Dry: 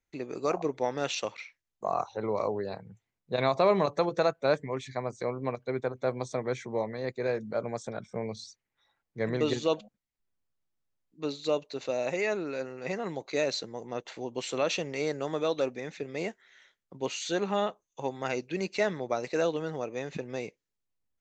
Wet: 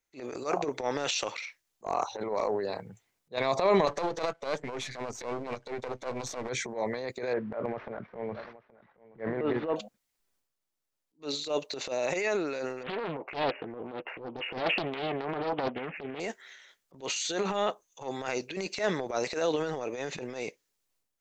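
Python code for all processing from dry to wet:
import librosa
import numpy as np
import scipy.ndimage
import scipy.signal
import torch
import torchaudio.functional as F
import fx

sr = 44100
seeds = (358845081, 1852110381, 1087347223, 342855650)

y = fx.chain(x, sr, fx.halfwave_gain(db=-12.0),
    fx.lowpass(hz=6900.0, slope=12),
    fx.band_squash(depth_pct=40), at=(3.87, 6.49))
y = fx.chain(y, sr, fx.cvsd(bps=32000),
    fx.lowpass(hz=1900.0, slope=24),
    fx.echo_single(ms=823, db=-21.0), at=(7.33, 9.76))
y = fx.chain(y, sr, fx.brickwall_lowpass(high_hz=2900.0),
    fx.doubler(ms=12.0, db=-12.5),
    fx.doppler_dist(depth_ms=0.79), at=(12.83, 16.2))
y = fx.bass_treble(y, sr, bass_db=-9, treble_db=4)
y = fx.transient(y, sr, attack_db=-12, sustain_db=8)
y = F.gain(torch.from_numpy(y), 1.5).numpy()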